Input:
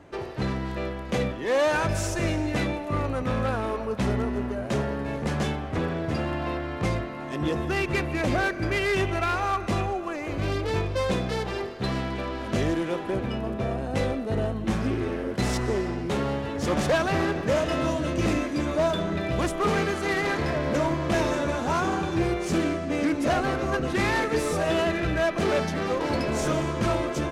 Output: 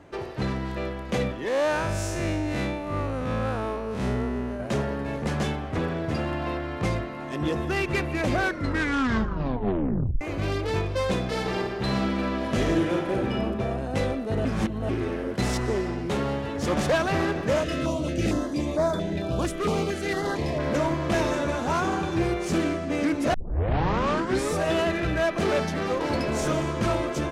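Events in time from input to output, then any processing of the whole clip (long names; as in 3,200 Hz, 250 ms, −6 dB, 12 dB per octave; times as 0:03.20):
0:01.48–0:04.60: spectrum smeared in time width 103 ms
0:08.41: tape stop 1.80 s
0:11.26–0:13.39: thrown reverb, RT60 1.1 s, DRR 0.5 dB
0:14.45–0:14.89: reverse
0:17.63–0:20.60: notch on a step sequencer 4.4 Hz 880–2,800 Hz
0:23.34: tape start 1.17 s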